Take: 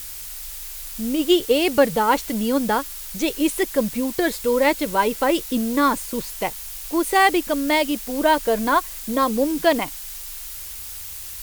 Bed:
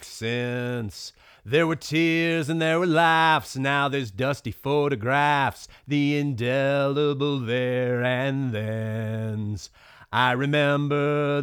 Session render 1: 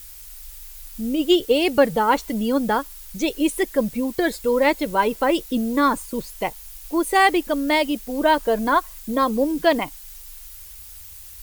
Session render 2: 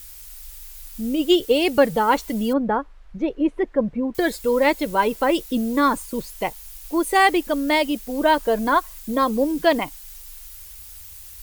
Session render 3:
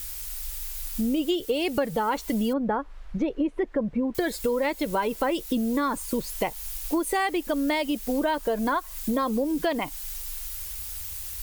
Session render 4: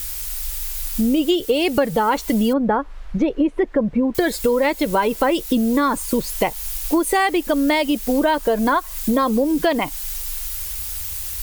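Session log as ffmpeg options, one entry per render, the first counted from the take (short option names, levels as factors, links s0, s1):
-af "afftdn=nr=9:nf=-35"
-filter_complex "[0:a]asettb=1/sr,asplit=3[s0][s1][s2];[s0]atrim=end=2.534[s3];[s1]atrim=start=2.53:end=4.15,asetpts=PTS-STARTPTS,afade=t=in:d=0.004:c=qsin,afade=t=out:st=1.616:d=0.004:c=qsin,lowpass=1400[s4];[s2]atrim=start=4.146[s5];[s3][s4]acrossfade=d=0.004:c1=hsin:c2=qsin[s6];[s6][s5]acrossfade=d=0.004:c1=qsin:c2=hsin"
-filter_complex "[0:a]asplit=2[s0][s1];[s1]alimiter=limit=0.168:level=0:latency=1:release=32,volume=0.794[s2];[s0][s2]amix=inputs=2:normalize=0,acompressor=threshold=0.0708:ratio=6"
-af "volume=2.37"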